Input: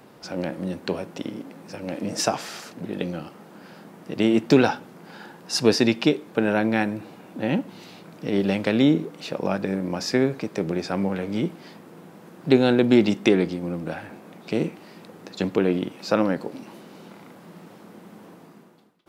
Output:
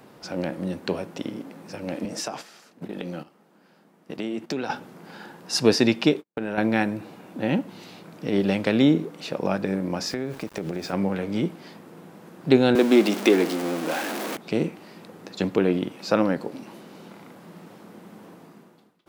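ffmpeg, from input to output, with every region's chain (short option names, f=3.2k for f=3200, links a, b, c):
-filter_complex "[0:a]asettb=1/sr,asplit=3[a][b][c];[a]atrim=end=2.054[d];[b]atrim=start=2.05:end=4.7,asetpts=PTS-STARTPTS,afade=t=in:d=0.004:c=qsin,afade=t=out:st=2.646:d=0.004:c=qsin,agate=range=-13dB:threshold=-35dB:ratio=16:release=100:detection=peak,highpass=140,acompressor=threshold=-29dB:ratio=3:attack=3.2:release=140:knee=1:detection=peak[e];[c]atrim=start=4.696[f];[d][e]acrossfade=d=0.004:c1=hsin:c2=qsin[g];[g][f]acrossfade=d=0.004:c1=qsin:c2=hsin,asettb=1/sr,asplit=3[h][i][j];[h]atrim=end=6.144[k];[i]atrim=start=6.14:end=6.58,asetpts=PTS-STARTPTS,afade=t=in:d=0.004:c=qsin,afade=t=out:st=0.436:d=0.004:c=qsin,acompressor=threshold=-24dB:ratio=6:attack=3.2:release=140:knee=1:detection=peak,agate=range=-48dB:threshold=-38dB:ratio=16:release=100:detection=peak[l];[j]atrim=start=6.576[m];[k][l]acrossfade=d=0.004:c1=hsin:c2=qsin[n];[n][m]acrossfade=d=0.004:c1=qsin:c2=hsin,asettb=1/sr,asplit=3[o][p][q];[o]atrim=end=10.074[r];[p]atrim=start=10.07:end=10.93,asetpts=PTS-STARTPTS,afade=t=in:d=0.004:c=qsin,afade=t=out:st=0.856:d=0.004:c=qsin,aeval=exprs='val(0)*gte(abs(val(0)),0.01)':c=same,acompressor=threshold=-25dB:ratio=5:attack=3.2:release=140:knee=1:detection=peak[s];[q]atrim=start=10.926[t];[r][s]acrossfade=d=0.004:c1=hsin:c2=qsin[u];[u][t]acrossfade=d=0.004:c1=qsin:c2=hsin,asettb=1/sr,asplit=3[v][w][x];[v]atrim=end=12.754[y];[w]atrim=start=12.75:end=14.37,asetpts=PTS-STARTPTS,afade=t=in:d=0.004:c=qsin,afade=t=out:st=1.616:d=0.004:c=qsin,aeval=exprs='val(0)+0.5*0.0596*sgn(val(0))':c=same,highpass=f=240:w=0.5412,highpass=f=240:w=1.3066[z];[x]atrim=start=14.366[aa];[y][z]acrossfade=d=0.004:c1=hsin:c2=qsin[ab];[ab][aa]acrossfade=d=0.004:c1=qsin:c2=hsin"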